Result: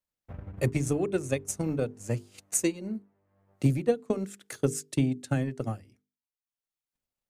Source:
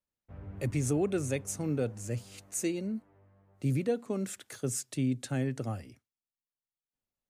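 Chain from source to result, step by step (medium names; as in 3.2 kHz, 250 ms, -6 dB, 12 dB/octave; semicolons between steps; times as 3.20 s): transient shaper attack +10 dB, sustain -9 dB; hum notches 50/100/150/200/250/300/350/400/450 Hz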